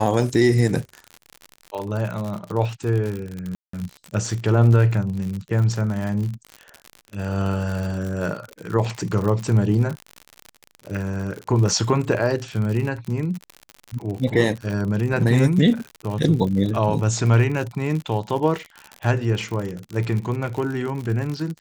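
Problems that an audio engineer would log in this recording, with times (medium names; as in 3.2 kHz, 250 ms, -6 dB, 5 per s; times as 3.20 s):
crackle 69 per s -27 dBFS
3.55–3.73 s: dropout 184 ms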